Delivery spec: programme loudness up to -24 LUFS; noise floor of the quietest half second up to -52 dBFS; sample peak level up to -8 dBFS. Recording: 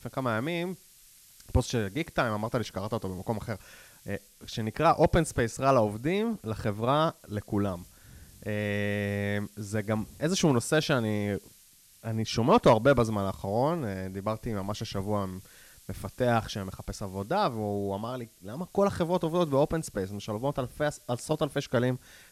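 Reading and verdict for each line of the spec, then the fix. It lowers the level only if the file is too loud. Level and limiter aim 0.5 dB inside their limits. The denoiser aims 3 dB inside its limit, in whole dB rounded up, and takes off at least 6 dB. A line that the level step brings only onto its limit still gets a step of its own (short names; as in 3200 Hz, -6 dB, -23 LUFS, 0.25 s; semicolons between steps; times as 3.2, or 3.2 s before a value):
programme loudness -29.0 LUFS: OK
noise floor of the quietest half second -58 dBFS: OK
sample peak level -11.0 dBFS: OK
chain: none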